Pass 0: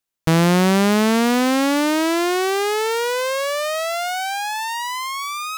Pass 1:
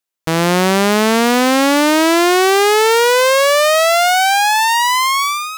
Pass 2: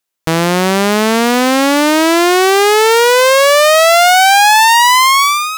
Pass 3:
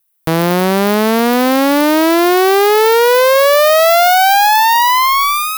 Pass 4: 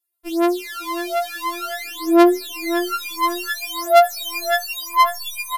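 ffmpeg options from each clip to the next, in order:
-af "bass=f=250:g=-8,treble=f=4k:g=0,dynaudnorm=f=100:g=7:m=12dB"
-af "alimiter=limit=-7dB:level=0:latency=1,volume=6dB"
-filter_complex "[0:a]acrossover=split=750[a][b];[b]asoftclip=type=tanh:threshold=-8.5dB[c];[a][c]amix=inputs=2:normalize=0,aexciter=amount=3.4:drive=7.9:freq=9.3k"
-filter_complex "[0:a]asplit=2[a][b];[b]adelay=548,lowpass=f=2.6k:p=1,volume=-10dB,asplit=2[c][d];[d]adelay=548,lowpass=f=2.6k:p=1,volume=0.46,asplit=2[e][f];[f]adelay=548,lowpass=f=2.6k:p=1,volume=0.46,asplit=2[g][h];[h]adelay=548,lowpass=f=2.6k:p=1,volume=0.46,asplit=2[i][j];[j]adelay=548,lowpass=f=2.6k:p=1,volume=0.46[k];[c][e][g][i][k]amix=inputs=5:normalize=0[l];[a][l]amix=inputs=2:normalize=0,aresample=32000,aresample=44100,afftfilt=real='re*4*eq(mod(b,16),0)':imag='im*4*eq(mod(b,16),0)':win_size=2048:overlap=0.75,volume=-7.5dB"

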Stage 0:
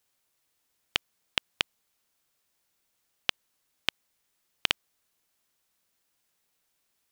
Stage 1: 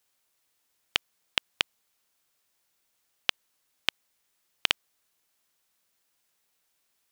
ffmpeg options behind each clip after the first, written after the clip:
-af "lowshelf=f=340:g=-4.5,volume=1.5dB"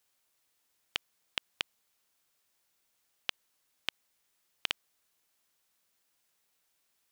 -af "alimiter=limit=-8dB:level=0:latency=1:release=41,volume=-1.5dB"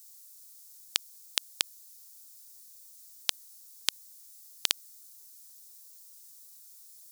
-af "aexciter=amount=4.1:drive=9.7:freq=4.1k,volume=1.5dB"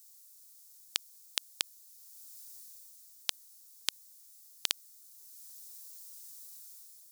-af "dynaudnorm=f=150:g=7:m=7.5dB,volume=-4.5dB"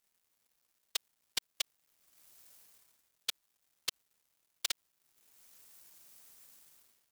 -af "afftfilt=real='hypot(re,im)*cos(2*PI*random(0))':imag='hypot(re,im)*sin(2*PI*random(1))':win_size=512:overlap=0.75,aeval=exprs='sgn(val(0))*max(abs(val(0))-0.00133,0)':c=same,volume=4dB"

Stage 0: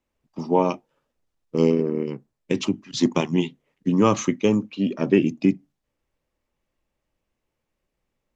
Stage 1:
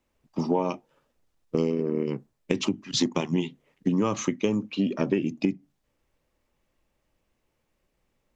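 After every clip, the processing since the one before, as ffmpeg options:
-af "acompressor=threshold=-26dB:ratio=6,volume=4.5dB"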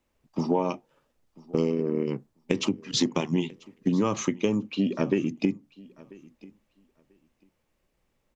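-af "aecho=1:1:991|1982:0.0708|0.0113"

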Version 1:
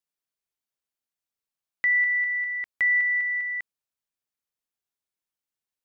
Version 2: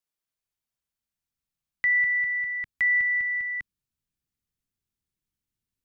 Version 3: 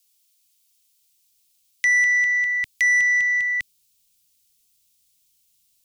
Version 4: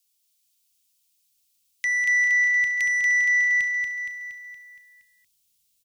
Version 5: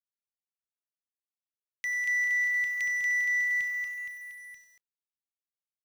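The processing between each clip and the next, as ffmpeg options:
-filter_complex "[0:a]asubboost=boost=11:cutoff=200,acrossover=split=510[a][b];[a]alimiter=level_in=16.5dB:limit=-24dB:level=0:latency=1:release=123,volume=-16.5dB[c];[c][b]amix=inputs=2:normalize=0"
-af "aexciter=amount=7.2:drive=6.4:freq=2.4k,asoftclip=type=tanh:threshold=-17.5dB,volume=3dB"
-af "aecho=1:1:234|468|702|936|1170|1404|1638:0.631|0.347|0.191|0.105|0.0577|0.0318|0.0175,volume=-6dB"
-filter_complex "[0:a]asplit=2[a][b];[b]adelay=93.29,volume=-16dB,highshelf=f=4k:g=-2.1[c];[a][c]amix=inputs=2:normalize=0,acrusher=bits=6:mix=0:aa=0.5,volume=-7.5dB"

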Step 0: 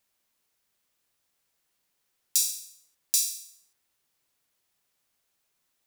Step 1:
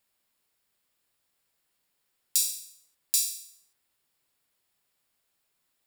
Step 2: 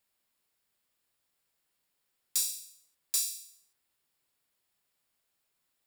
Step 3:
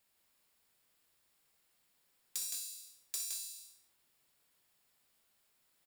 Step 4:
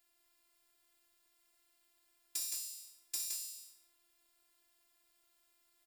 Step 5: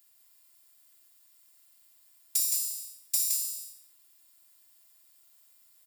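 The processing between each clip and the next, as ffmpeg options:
-af "bandreject=f=6.1k:w=6.2"
-af "aeval=exprs='(tanh(5.01*val(0)+0.05)-tanh(0.05))/5.01':c=same,volume=-3dB"
-filter_complex "[0:a]acompressor=threshold=-39dB:ratio=5,asoftclip=type=tanh:threshold=-29.5dB,asplit=2[a][b];[b]aecho=0:1:60|166|189:0.335|0.631|0.355[c];[a][c]amix=inputs=2:normalize=0,volume=2.5dB"
-af "afftfilt=real='hypot(re,im)*cos(PI*b)':imag='0':win_size=512:overlap=0.75,volume=4dB"
-af "crystalizer=i=2.5:c=0"

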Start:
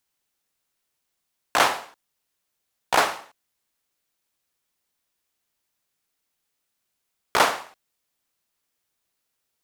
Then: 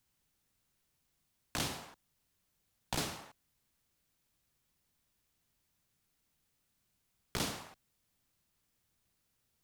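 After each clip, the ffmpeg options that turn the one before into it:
-filter_complex "[0:a]bass=f=250:g=14,treble=f=4k:g=0,acrossover=split=370|3000[a][b][c];[b]acompressor=threshold=-33dB:ratio=6[d];[a][d][c]amix=inputs=3:normalize=0,alimiter=limit=-20.5dB:level=0:latency=1:release=415,volume=-1.5dB"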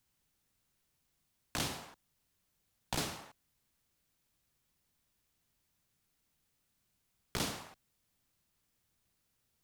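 -af anull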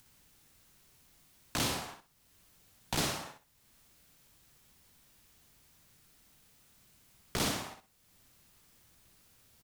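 -filter_complex "[0:a]asplit=2[a][b];[b]acompressor=mode=upward:threshold=-54dB:ratio=2.5,volume=-2.5dB[c];[a][c]amix=inputs=2:normalize=0,asoftclip=type=tanh:threshold=-26.5dB,aecho=1:1:61|122|183:0.473|0.104|0.0229,volume=1.5dB"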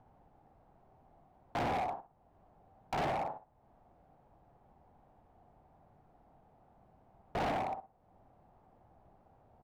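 -af "lowpass=f=760:t=q:w=4.9,asoftclip=type=hard:threshold=-35.5dB,volume=4dB"

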